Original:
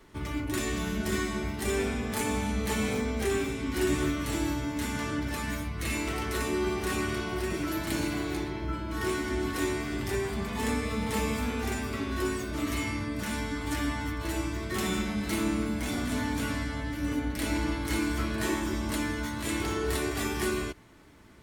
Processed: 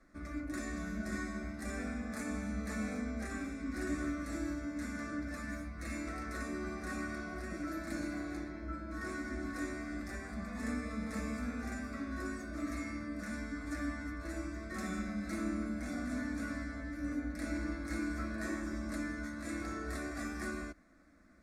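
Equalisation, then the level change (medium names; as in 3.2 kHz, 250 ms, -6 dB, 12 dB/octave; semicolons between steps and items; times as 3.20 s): distance through air 60 m; static phaser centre 610 Hz, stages 8; -5.5 dB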